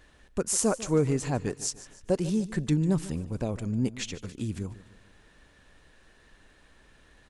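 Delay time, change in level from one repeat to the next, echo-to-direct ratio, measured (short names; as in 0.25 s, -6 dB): 0.148 s, -7.0 dB, -16.0 dB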